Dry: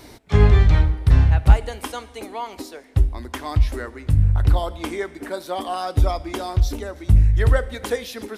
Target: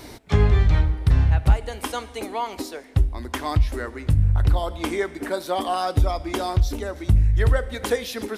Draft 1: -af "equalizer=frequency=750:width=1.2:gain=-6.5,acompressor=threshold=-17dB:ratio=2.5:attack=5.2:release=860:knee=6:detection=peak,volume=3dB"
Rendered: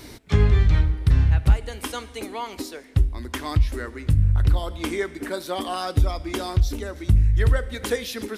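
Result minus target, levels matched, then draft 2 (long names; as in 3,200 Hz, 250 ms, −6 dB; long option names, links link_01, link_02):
1,000 Hz band −4.5 dB
-af "acompressor=threshold=-17dB:ratio=2.5:attack=5.2:release=860:knee=6:detection=peak,volume=3dB"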